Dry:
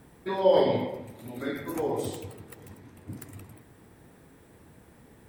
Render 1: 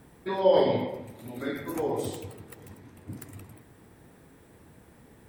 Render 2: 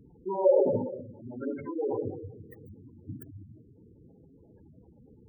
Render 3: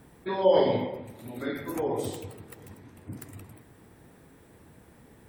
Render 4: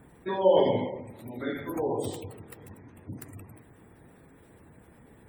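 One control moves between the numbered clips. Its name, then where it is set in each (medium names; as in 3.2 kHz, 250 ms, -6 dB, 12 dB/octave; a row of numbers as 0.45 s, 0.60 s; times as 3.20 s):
spectral gate, under each frame's peak: -60 dB, -10 dB, -45 dB, -30 dB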